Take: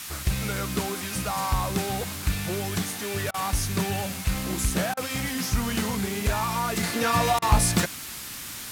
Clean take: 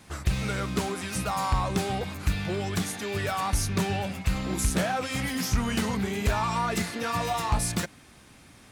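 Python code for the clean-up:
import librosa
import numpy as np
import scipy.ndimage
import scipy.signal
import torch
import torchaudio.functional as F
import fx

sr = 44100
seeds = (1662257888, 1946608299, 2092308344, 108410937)

y = fx.fix_interpolate(x, sr, at_s=(3.31, 4.94, 7.39), length_ms=30.0)
y = fx.noise_reduce(y, sr, print_start_s=7.95, print_end_s=8.45, reduce_db=14.0)
y = fx.fix_level(y, sr, at_s=6.83, step_db=-6.0)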